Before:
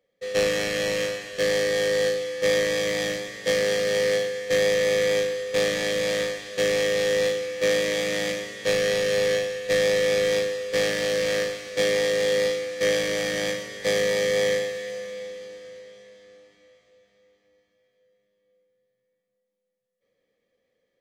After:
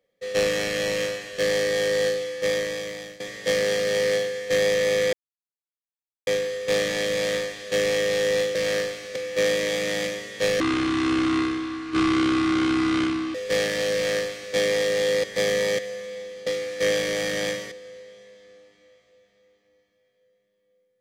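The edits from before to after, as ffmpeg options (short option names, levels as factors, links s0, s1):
-filter_complex "[0:a]asplit=11[s0][s1][s2][s3][s4][s5][s6][s7][s8][s9][s10];[s0]atrim=end=3.2,asetpts=PTS-STARTPTS,afade=t=out:st=2.23:d=0.97:silence=0.125893[s11];[s1]atrim=start=3.2:end=5.13,asetpts=PTS-STARTPTS,afade=t=in:d=0.004:c=hsin:silence=0.125893,afade=t=out:st=1.926:d=0.004:c=hsin,apad=pad_dur=1.14[s12];[s2]atrim=start=5.13:end=7.412,asetpts=PTS-STARTPTS,afade=t=in:d=0.004:c=hsin[s13];[s3]atrim=start=11.168:end=11.782[s14];[s4]atrim=start=7.408:end=8.854[s15];[s5]atrim=start=8.85:end=10.58,asetpts=PTS-STARTPTS,asetrate=27783,aresample=44100[s16];[s6]atrim=start=10.576:end=12.472[s17];[s7]atrim=start=13.718:end=14.272[s18];[s8]atrim=start=14.828:end=15.512[s19];[s9]atrim=start=12.468:end=13.722[s20];[s10]atrim=start=15.508[s21];[s11][s12][s13]concat=n=3:v=0:a=1[s22];[s22][s14]acrossfade=d=0.004:c1=hsin:c2=hsin[s23];[s23][s15]acrossfade=d=0.004:c1=hsin:c2=hsin[s24];[s24][s16]acrossfade=d=0.004:c1=hsin:c2=hsin[s25];[s25][s17]acrossfade=d=0.004:c1=hsin:c2=hsin[s26];[s26][s18]acrossfade=d=0.004:c1=hsin:c2=hsin[s27];[s27][s19]acrossfade=d=0.004:c1=hsin:c2=hsin[s28];[s28][s20]acrossfade=d=0.004:c1=hsin:c2=hsin[s29];[s29][s21]acrossfade=d=0.004:c1=hsin:c2=hsin"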